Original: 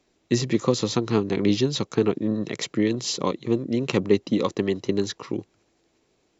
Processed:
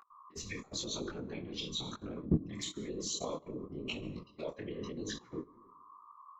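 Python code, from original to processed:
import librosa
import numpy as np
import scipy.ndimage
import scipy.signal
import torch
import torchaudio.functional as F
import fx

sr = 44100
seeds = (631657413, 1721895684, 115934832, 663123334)

y = fx.bin_expand(x, sr, power=2.0)
y = y + 10.0 ** (-56.0 / 20.0) * np.sin(2.0 * np.pi * 1100.0 * np.arange(len(y)) / sr)
y = fx.over_compress(y, sr, threshold_db=-30.0, ratio=-0.5)
y = fx.env_flanger(y, sr, rest_ms=4.5, full_db=-27.5)
y = fx.peak_eq(y, sr, hz=1800.0, db=-7.0, octaves=1.8, at=(1.9, 4.46))
y = fx.rev_fdn(y, sr, rt60_s=0.82, lf_ratio=1.0, hf_ratio=0.6, size_ms=28.0, drr_db=7.0)
y = fx.level_steps(y, sr, step_db=21)
y = fx.bass_treble(y, sr, bass_db=-12, treble_db=-3)
y = fx.whisperise(y, sr, seeds[0])
y = fx.detune_double(y, sr, cents=34)
y = y * librosa.db_to_amplitude(10.5)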